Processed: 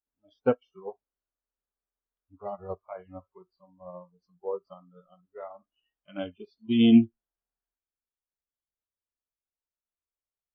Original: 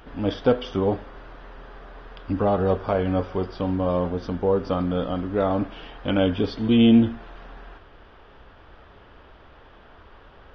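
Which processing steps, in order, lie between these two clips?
spectral noise reduction 28 dB; upward expander 2.5:1, over -31 dBFS

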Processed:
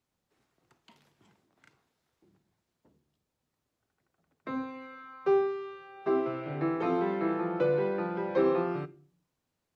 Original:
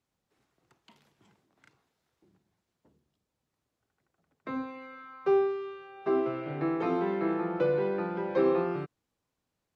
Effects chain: on a send: high shelf 2700 Hz +11 dB + reverb RT60 0.45 s, pre-delay 3 ms, DRR 15 dB

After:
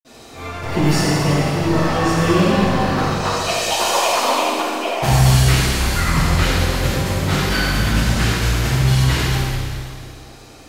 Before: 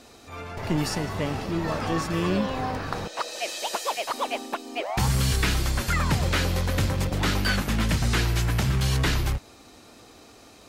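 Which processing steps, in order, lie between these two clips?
vocal rider 2 s; reverb RT60 2.2 s, pre-delay 48 ms, DRR -60 dB; gain +7 dB

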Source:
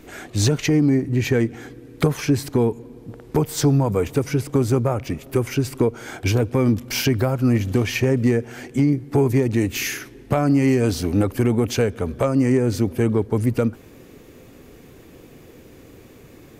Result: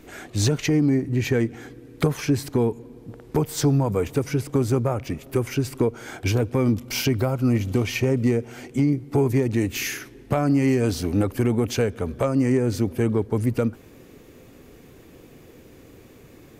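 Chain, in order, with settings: 6.63–9.22 notch 1700 Hz, Q 7.9; gain -2.5 dB

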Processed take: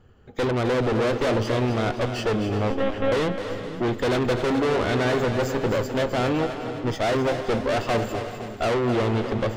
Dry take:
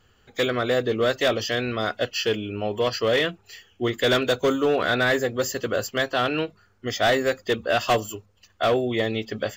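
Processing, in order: tilt shelf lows +9.5 dB, about 1400 Hz; tube stage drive 25 dB, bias 0.8; 2.7–3.12 monotone LPC vocoder at 8 kHz 270 Hz; split-band echo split 360 Hz, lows 0.481 s, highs 0.258 s, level -9 dB; non-linear reverb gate 0.45 s rising, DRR 12 dB; gain +4 dB

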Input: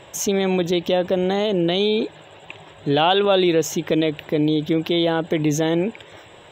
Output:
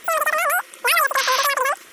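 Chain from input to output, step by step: wide varispeed 3.39×; painted sound noise, 1.17–1.47, 940–6400 Hz -24 dBFS

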